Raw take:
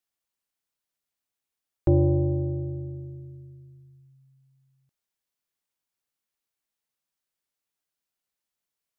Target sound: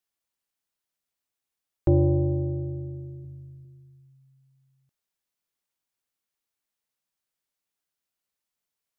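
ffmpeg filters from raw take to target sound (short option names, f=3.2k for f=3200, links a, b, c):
-filter_complex "[0:a]asettb=1/sr,asplit=3[a][b][c];[a]atrim=end=3.234[d];[b]atrim=start=3.23:end=3.65,asetpts=PTS-STARTPTS,afade=t=in:d=0.004:c=qsin,afade=t=out:st=0.416:d=0.004:c=qsin,asplit=2[e][f];[f]adelay=13,volume=-4.5dB[g];[e][g]amix=inputs=2:normalize=0,atrim=end_sample=18522[h];[c]atrim=start=3.646[i];[d][h]acrossfade=d=0.004:c1=hsin:c2=qsin[j];[j][i]acrossfade=d=0.004:c1=qsin:c2=hsin"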